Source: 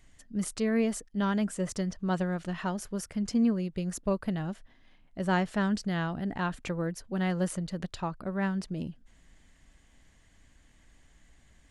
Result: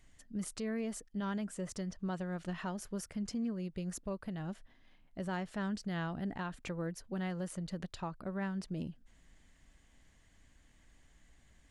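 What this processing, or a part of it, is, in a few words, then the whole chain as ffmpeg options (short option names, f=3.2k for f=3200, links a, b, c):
clipper into limiter: -af "asoftclip=type=hard:threshold=-18.5dB,alimiter=level_in=2dB:limit=-24dB:level=0:latency=1:release=299,volume=-2dB,volume=-4dB"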